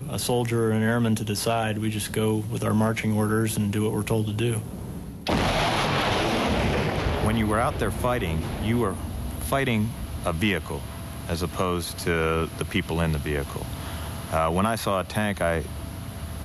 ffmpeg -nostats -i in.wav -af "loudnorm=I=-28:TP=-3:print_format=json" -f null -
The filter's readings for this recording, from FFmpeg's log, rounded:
"input_i" : "-25.9",
"input_tp" : "-8.9",
"input_lra" : "2.9",
"input_thresh" : "-36.0",